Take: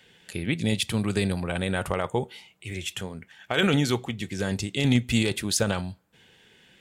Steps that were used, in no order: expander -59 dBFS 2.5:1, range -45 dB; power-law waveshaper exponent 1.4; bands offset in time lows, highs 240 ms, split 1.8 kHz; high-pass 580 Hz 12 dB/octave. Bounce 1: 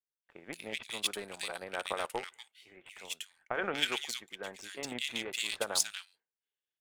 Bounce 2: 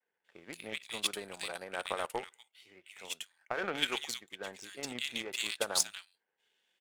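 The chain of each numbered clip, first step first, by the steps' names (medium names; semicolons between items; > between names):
high-pass > power-law waveshaper > bands offset in time > expander; high-pass > expander > bands offset in time > power-law waveshaper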